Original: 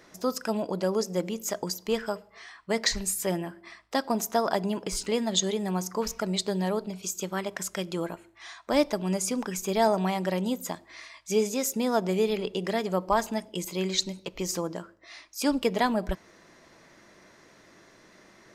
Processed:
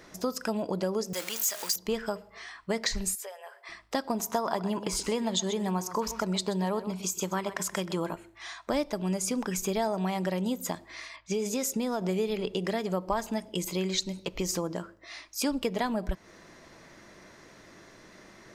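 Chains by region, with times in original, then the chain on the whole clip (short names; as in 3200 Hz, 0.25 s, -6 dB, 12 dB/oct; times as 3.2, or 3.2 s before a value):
1.13–1.76 zero-crossing step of -33 dBFS + HPF 1200 Hz 6 dB/oct + tilt +2.5 dB/oct
3.15–3.69 compressor 5:1, threshold -38 dBFS + brick-wall FIR high-pass 400 Hz
4.19–8.13 HPF 54 Hz + bell 1000 Hz +7 dB 0.5 oct + echo 0.128 s -14.5 dB
11.16–12.01 low-pass opened by the level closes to 2900 Hz, open at -23.5 dBFS + compressor 3:1, threshold -25 dBFS
whole clip: low shelf 110 Hz +6 dB; compressor 3:1, threshold -30 dBFS; gain +2.5 dB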